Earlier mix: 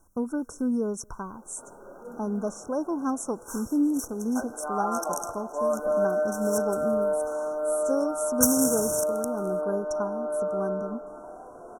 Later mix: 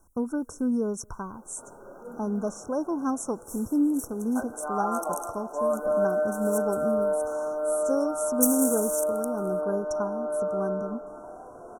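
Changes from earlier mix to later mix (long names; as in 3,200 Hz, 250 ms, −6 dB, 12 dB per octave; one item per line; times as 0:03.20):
second sound: add inverse Chebyshev band-stop filter 130–1,500 Hz, stop band 80 dB
master: add parametric band 100 Hz +4.5 dB 0.95 octaves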